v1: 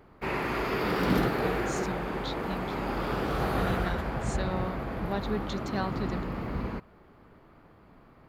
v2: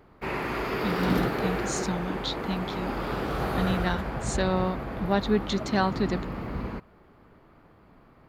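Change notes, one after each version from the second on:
speech +8.0 dB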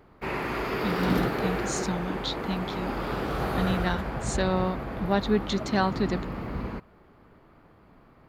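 nothing changed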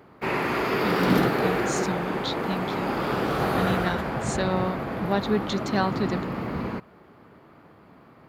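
background +5.0 dB
master: add high-pass filter 110 Hz 12 dB per octave

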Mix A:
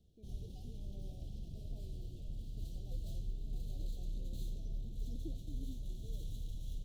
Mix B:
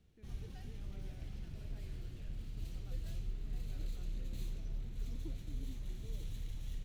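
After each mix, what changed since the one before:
speech −3.5 dB
master: remove Chebyshev band-stop filter 680–3,300 Hz, order 3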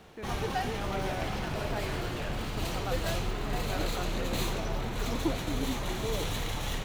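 master: remove guitar amp tone stack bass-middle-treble 10-0-1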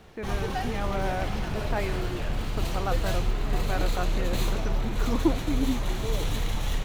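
speech +7.0 dB
master: add low-shelf EQ 75 Hz +10.5 dB

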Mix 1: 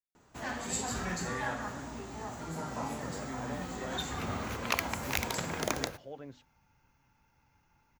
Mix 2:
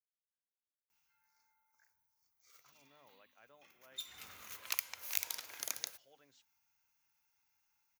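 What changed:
first sound: muted
master: add first-order pre-emphasis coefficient 0.97

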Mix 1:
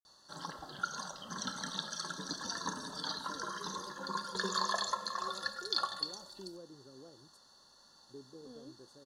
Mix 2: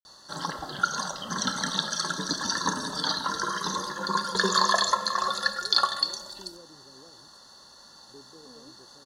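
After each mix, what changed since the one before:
background +11.0 dB
master: add parametric band 2,000 Hz +3.5 dB 0.27 octaves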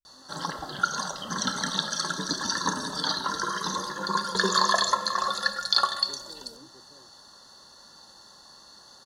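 speech: entry −2.05 s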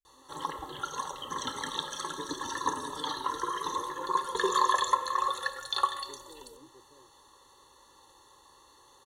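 master: add phaser with its sweep stopped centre 1,000 Hz, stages 8

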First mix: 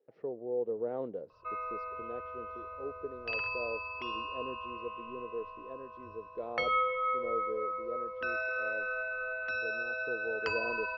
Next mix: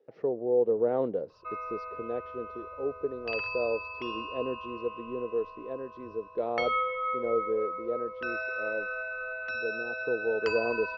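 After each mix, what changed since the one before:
speech +8.5 dB
master: remove high-frequency loss of the air 51 metres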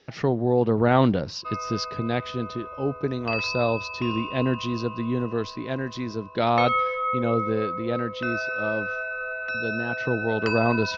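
speech: remove resonant band-pass 470 Hz, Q 4.2
background +5.0 dB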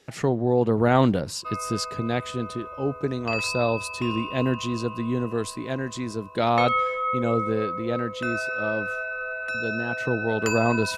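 master: remove Butterworth low-pass 5,900 Hz 72 dB per octave

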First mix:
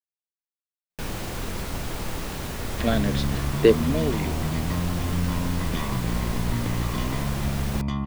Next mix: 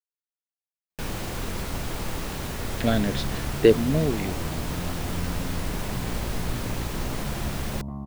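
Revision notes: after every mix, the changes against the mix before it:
speech: remove high-pass filter 160 Hz
second sound: add transistor ladder low-pass 950 Hz, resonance 35%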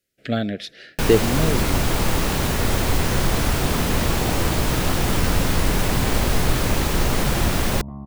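speech: entry −2.55 s
first sound +10.5 dB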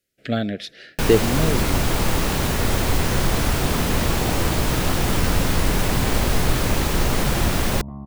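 nothing changed

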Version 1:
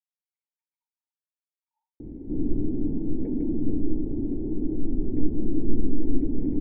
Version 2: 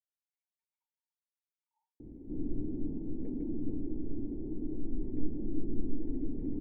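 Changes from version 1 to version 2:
background −10.5 dB
reverb: on, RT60 0.90 s

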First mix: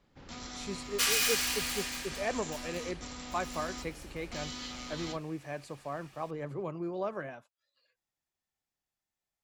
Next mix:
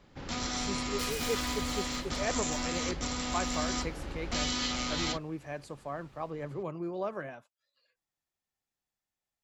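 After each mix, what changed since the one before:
first sound +10.5 dB
second sound −11.0 dB
reverb: off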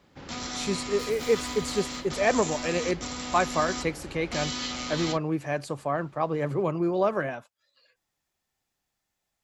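speech +10.5 dB
first sound: add high-pass filter 90 Hz 6 dB per octave
second sound −6.5 dB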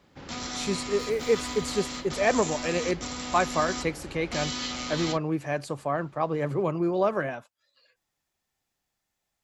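second sound −6.5 dB

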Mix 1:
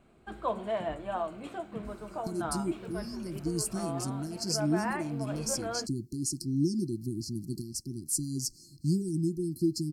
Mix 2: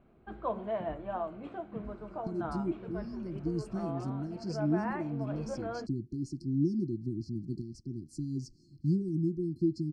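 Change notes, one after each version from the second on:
master: add head-to-tape spacing loss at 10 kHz 32 dB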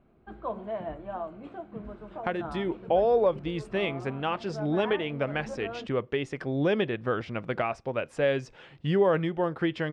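speech: remove linear-phase brick-wall band-stop 370–4,100 Hz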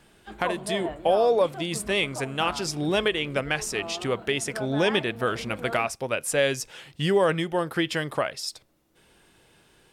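speech: entry −1.85 s
master: remove head-to-tape spacing loss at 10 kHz 32 dB

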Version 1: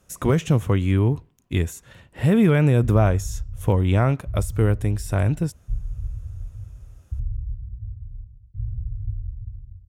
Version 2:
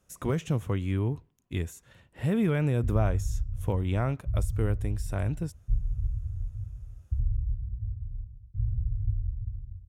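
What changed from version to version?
speech −9.0 dB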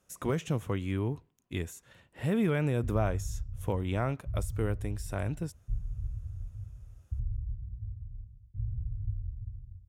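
master: add low-shelf EQ 140 Hz −7.5 dB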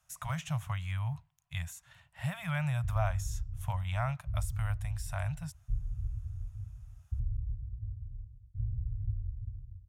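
master: add inverse Chebyshev band-stop filter 220–470 Hz, stop band 40 dB

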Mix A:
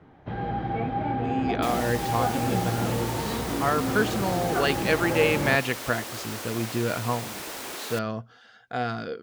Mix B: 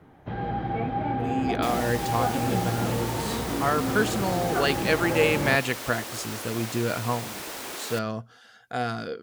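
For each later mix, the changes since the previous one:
speech: remove low-pass filter 4,800 Hz 12 dB per octave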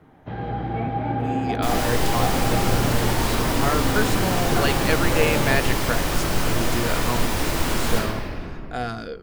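second sound: remove high-pass filter 290 Hz 24 dB per octave
reverb: on, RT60 2.7 s

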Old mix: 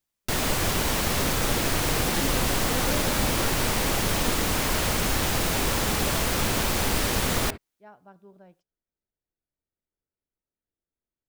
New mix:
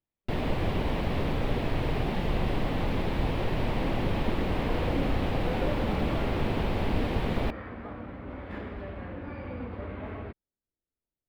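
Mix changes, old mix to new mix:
first sound: add parametric band 1,400 Hz −8.5 dB 0.88 octaves
second sound: entry +2.75 s
master: add high-frequency loss of the air 480 metres

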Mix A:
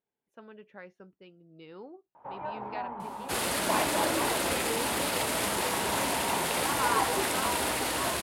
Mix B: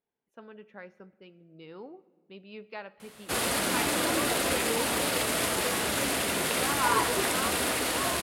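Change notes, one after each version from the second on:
first sound: muted
reverb: on, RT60 1.6 s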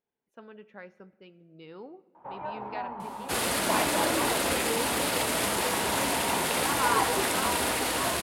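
first sound: unmuted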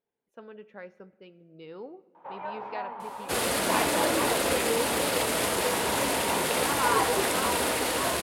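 first sound: add spectral tilt +4 dB per octave
master: add parametric band 490 Hz +4.5 dB 0.67 octaves

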